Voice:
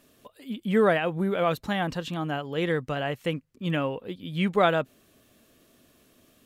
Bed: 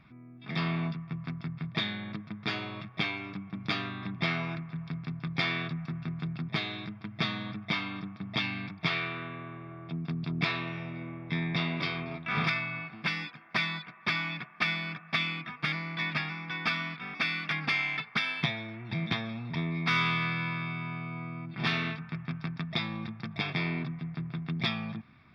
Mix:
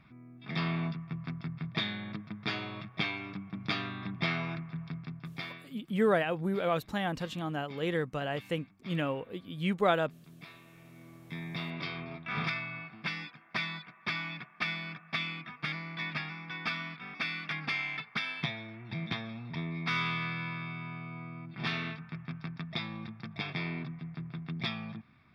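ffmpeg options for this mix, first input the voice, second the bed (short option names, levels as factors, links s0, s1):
-filter_complex "[0:a]adelay=5250,volume=0.562[s0];[1:a]volume=5.62,afade=t=out:st=4.76:d=0.9:silence=0.105925,afade=t=in:st=10.67:d=1.37:silence=0.149624[s1];[s0][s1]amix=inputs=2:normalize=0"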